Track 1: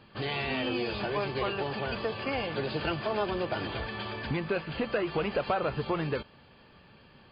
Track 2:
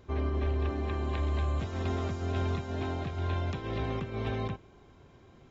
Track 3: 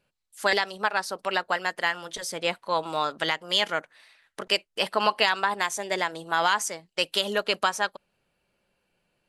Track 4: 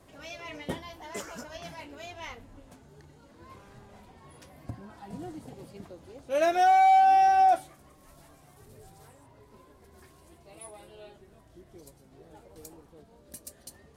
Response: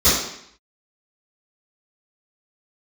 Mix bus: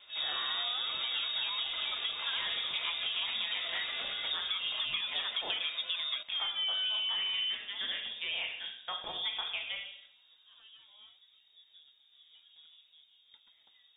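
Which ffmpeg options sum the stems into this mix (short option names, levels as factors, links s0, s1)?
-filter_complex "[0:a]volume=0.75[s0];[1:a]aemphasis=mode=production:type=riaa,alimiter=level_in=2.51:limit=0.0631:level=0:latency=1,volume=0.398,volume=0.316,asplit=2[s1][s2];[s2]volume=0.188[s3];[2:a]alimiter=limit=0.15:level=0:latency=1:release=80,adelay=1900,volume=0.335,asplit=2[s4][s5];[s5]volume=0.1[s6];[3:a]volume=0.376[s7];[4:a]atrim=start_sample=2205[s8];[s3][s6]amix=inputs=2:normalize=0[s9];[s9][s8]afir=irnorm=-1:irlink=0[s10];[s0][s1][s4][s7][s10]amix=inputs=5:normalize=0,lowpass=f=3200:t=q:w=0.5098,lowpass=f=3200:t=q:w=0.6013,lowpass=f=3200:t=q:w=0.9,lowpass=f=3200:t=q:w=2.563,afreqshift=-3800,acompressor=threshold=0.0282:ratio=6"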